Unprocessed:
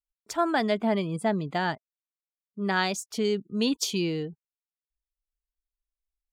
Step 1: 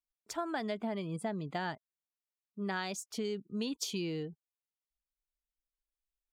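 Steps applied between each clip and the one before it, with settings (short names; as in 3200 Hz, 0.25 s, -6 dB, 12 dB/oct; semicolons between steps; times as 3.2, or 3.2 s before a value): compressor, threshold -26 dBFS, peak gain reduction 7.5 dB; gain -6 dB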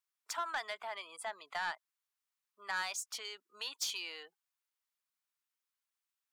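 ladder high-pass 840 Hz, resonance 30%; soft clip -39.5 dBFS, distortion -12 dB; gain +10.5 dB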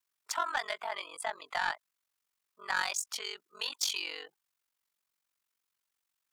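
ring modulator 23 Hz; gain +8 dB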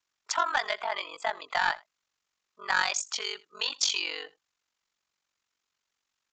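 echo 82 ms -22.5 dB; downsampling 16000 Hz; gain +5.5 dB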